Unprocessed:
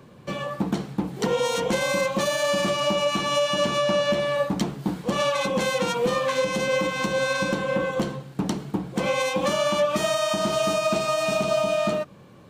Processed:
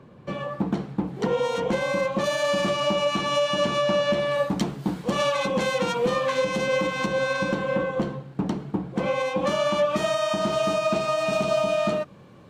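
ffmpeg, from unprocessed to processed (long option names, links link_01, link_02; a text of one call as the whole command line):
ffmpeg -i in.wav -af "asetnsamples=nb_out_samples=441:pad=0,asendcmd='2.24 lowpass f 4600;4.31 lowpass f 10000;5.35 lowpass f 4900;7.06 lowpass f 2900;7.83 lowpass f 1700;9.47 lowpass f 3500;11.33 lowpass f 5800',lowpass=frequency=1900:poles=1" out.wav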